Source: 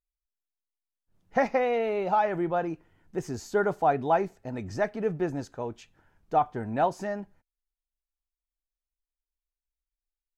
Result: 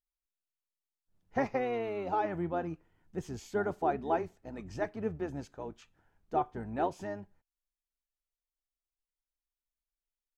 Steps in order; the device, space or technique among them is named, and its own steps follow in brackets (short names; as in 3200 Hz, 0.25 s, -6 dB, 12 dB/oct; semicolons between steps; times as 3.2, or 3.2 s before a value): octave pedal (harmoniser -12 st -7 dB); gain -7.5 dB